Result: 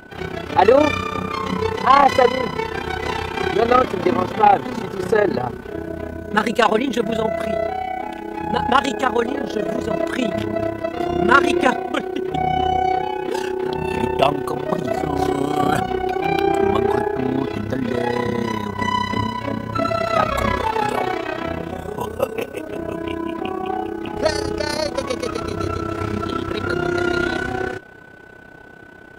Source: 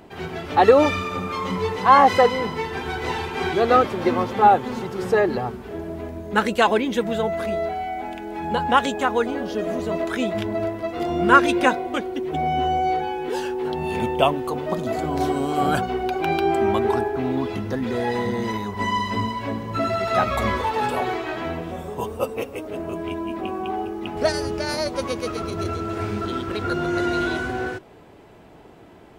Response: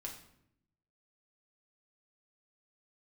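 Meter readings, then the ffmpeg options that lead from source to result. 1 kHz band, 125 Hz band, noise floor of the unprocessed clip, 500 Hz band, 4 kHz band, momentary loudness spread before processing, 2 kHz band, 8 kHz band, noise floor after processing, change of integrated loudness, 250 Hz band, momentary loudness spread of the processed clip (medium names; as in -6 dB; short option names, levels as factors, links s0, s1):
+1.5 dB, +2.5 dB, -45 dBFS, +2.0 dB, +2.5 dB, 12 LU, +2.0 dB, +2.5 dB, -40 dBFS, +2.0 dB, +2.5 dB, 11 LU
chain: -af "aeval=exprs='val(0)+0.00501*sin(2*PI*1500*n/s)':c=same,tremolo=f=32:d=0.75,acontrast=87,volume=0.891"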